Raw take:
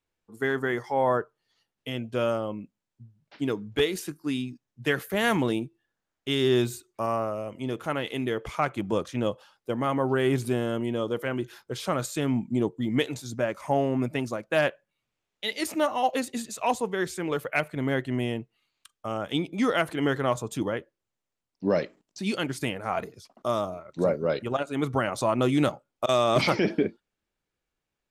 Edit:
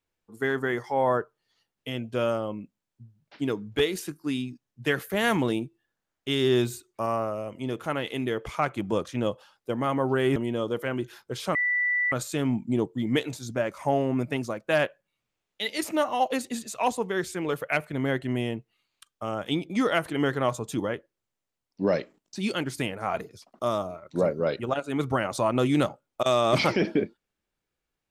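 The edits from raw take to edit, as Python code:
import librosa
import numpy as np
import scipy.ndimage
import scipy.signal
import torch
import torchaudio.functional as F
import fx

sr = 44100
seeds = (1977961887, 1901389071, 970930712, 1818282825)

y = fx.edit(x, sr, fx.cut(start_s=10.36, length_s=0.4),
    fx.insert_tone(at_s=11.95, length_s=0.57, hz=1970.0, db=-22.0), tone=tone)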